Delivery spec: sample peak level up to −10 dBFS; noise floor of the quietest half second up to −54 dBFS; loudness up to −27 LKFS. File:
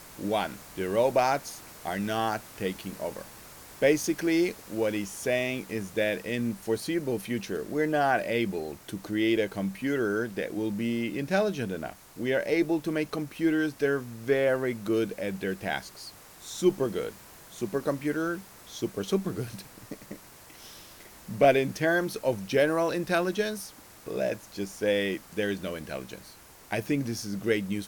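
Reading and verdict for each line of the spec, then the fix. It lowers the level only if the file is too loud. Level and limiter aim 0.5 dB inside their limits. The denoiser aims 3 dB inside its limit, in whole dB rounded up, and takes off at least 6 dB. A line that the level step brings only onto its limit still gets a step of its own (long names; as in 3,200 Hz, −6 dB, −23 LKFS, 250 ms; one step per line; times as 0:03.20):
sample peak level −8.5 dBFS: out of spec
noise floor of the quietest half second −51 dBFS: out of spec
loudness −29.0 LKFS: in spec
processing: broadband denoise 6 dB, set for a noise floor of −51 dBFS
brickwall limiter −10.5 dBFS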